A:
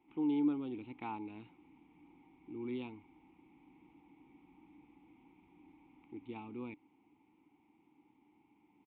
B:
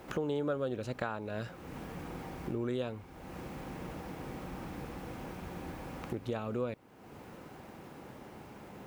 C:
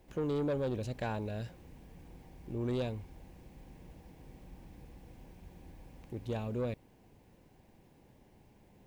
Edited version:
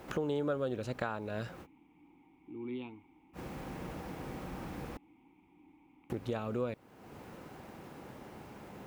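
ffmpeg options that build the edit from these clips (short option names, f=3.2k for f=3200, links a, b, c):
-filter_complex "[0:a]asplit=2[a][b];[1:a]asplit=3[c][d][e];[c]atrim=end=1.67[f];[a]atrim=start=1.61:end=3.39[g];[d]atrim=start=3.33:end=4.972[h];[b]atrim=start=4.968:end=6.102[i];[e]atrim=start=6.098[j];[f][g]acrossfade=d=0.06:c1=tri:c2=tri[k];[k][h]acrossfade=d=0.06:c1=tri:c2=tri[l];[l][i]acrossfade=d=0.004:c1=hsin:c2=hsin[m];[m][j]acrossfade=d=0.004:c1=hsin:c2=hsin"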